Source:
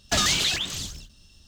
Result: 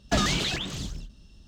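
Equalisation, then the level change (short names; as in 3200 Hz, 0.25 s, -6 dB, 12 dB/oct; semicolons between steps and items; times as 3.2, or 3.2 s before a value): HPF 50 Hz 12 dB/oct; tilt -3 dB/oct; bell 83 Hz -11.5 dB 0.88 oct; 0.0 dB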